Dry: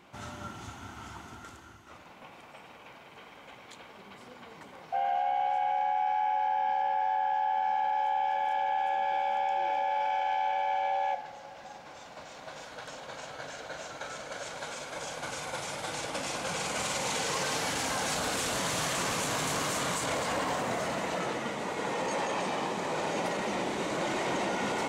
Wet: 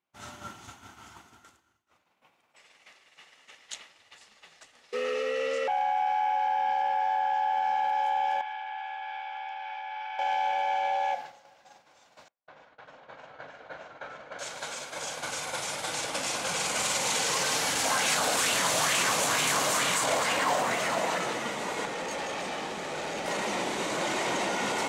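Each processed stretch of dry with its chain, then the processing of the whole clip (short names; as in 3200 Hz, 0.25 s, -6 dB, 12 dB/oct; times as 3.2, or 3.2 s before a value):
2.56–5.68 weighting filter ITU-R 468 + frequency shift -290 Hz
8.41–10.19 Bessel high-pass 1300 Hz, order 8 + air absorption 250 m
12.28–14.39 LPF 2000 Hz + gate with hold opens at -36 dBFS, closes at -45 dBFS
17.84–21.18 HPF 87 Hz + LFO bell 2.2 Hz 600–2800 Hz +7 dB
21.85–23.28 high shelf 7700 Hz -6.5 dB + notch 1000 Hz, Q 6.2 + tube stage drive 29 dB, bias 0.5
whole clip: expander -37 dBFS; tilt +1.5 dB/oct; gain +2 dB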